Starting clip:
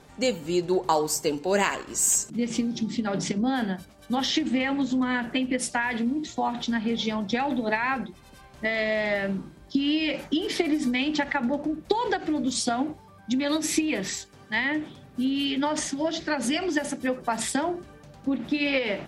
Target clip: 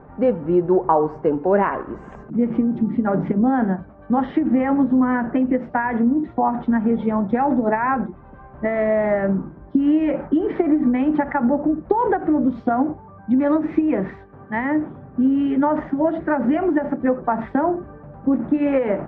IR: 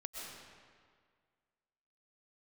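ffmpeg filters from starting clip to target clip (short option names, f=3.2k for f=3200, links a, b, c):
-filter_complex "[0:a]lowpass=f=1.4k:w=0.5412,lowpass=f=1.4k:w=1.3066,asplit=2[a][b];[b]alimiter=limit=-19.5dB:level=0:latency=1:release=126,volume=-0.5dB[c];[a][c]amix=inputs=2:normalize=0,volume=3dB"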